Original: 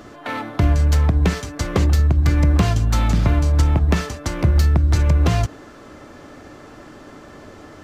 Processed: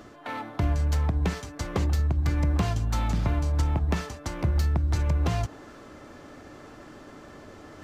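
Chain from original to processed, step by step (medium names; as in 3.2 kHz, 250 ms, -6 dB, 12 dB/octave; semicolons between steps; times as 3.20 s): dynamic bell 860 Hz, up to +4 dB, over -43 dBFS, Q 2.6; reverse; upward compressor, threshold -30 dBFS; reverse; trim -9 dB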